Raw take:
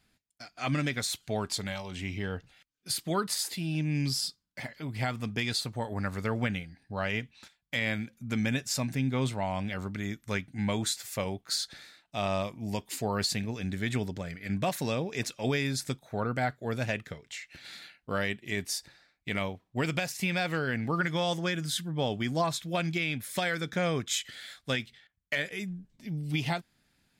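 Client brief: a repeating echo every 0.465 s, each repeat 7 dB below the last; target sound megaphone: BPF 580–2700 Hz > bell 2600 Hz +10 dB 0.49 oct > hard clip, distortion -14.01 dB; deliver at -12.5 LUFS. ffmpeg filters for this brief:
-af "highpass=580,lowpass=2.7k,equalizer=f=2.6k:t=o:w=0.49:g=10,aecho=1:1:465|930|1395|1860|2325:0.447|0.201|0.0905|0.0407|0.0183,asoftclip=type=hard:threshold=-24dB,volume=21.5dB"

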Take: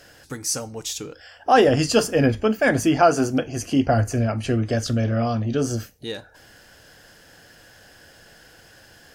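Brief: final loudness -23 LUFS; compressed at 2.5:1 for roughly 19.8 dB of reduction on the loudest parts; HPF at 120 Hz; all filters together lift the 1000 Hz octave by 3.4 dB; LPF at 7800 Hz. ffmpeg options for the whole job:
-af "highpass=120,lowpass=7.8k,equalizer=f=1k:t=o:g=5.5,acompressor=threshold=-39dB:ratio=2.5,volume=13dB"

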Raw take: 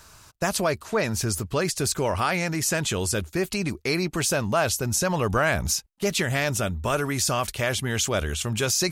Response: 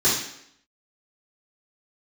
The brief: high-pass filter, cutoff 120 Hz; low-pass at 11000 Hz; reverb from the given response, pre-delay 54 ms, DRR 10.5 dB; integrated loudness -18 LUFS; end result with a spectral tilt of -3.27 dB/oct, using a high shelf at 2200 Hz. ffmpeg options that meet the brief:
-filter_complex "[0:a]highpass=120,lowpass=11k,highshelf=f=2.2k:g=8.5,asplit=2[a][b];[1:a]atrim=start_sample=2205,adelay=54[c];[b][c]afir=irnorm=-1:irlink=0,volume=-26.5dB[d];[a][d]amix=inputs=2:normalize=0,volume=2.5dB"

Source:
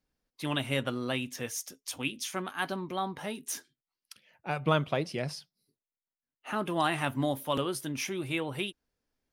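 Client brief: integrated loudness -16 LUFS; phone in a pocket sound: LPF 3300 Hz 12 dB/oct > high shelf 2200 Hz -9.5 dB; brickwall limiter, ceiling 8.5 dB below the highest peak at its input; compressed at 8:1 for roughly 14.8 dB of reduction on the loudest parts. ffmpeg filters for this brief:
-af "acompressor=threshold=-36dB:ratio=8,alimiter=level_in=7.5dB:limit=-24dB:level=0:latency=1,volume=-7.5dB,lowpass=3.3k,highshelf=f=2.2k:g=-9.5,volume=29dB"

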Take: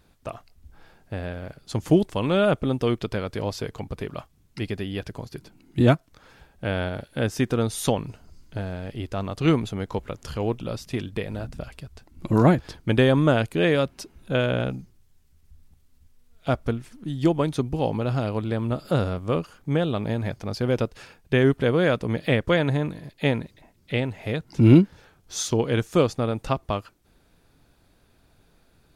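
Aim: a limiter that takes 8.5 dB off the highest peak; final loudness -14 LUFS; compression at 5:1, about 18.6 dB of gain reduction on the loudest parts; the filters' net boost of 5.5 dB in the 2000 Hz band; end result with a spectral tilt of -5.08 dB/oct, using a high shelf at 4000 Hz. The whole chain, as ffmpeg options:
-af "equalizer=f=2k:t=o:g=6,highshelf=f=4k:g=5,acompressor=threshold=-30dB:ratio=5,volume=22dB,alimiter=limit=-1.5dB:level=0:latency=1"

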